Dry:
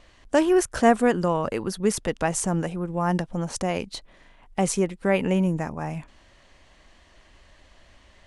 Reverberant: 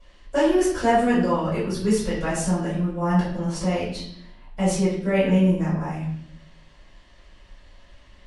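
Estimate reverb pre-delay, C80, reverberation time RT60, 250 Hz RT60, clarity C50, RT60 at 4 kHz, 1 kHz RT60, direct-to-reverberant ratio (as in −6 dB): 4 ms, 6.5 dB, 0.65 s, 1.1 s, 2.5 dB, 0.70 s, 0.55 s, −11.5 dB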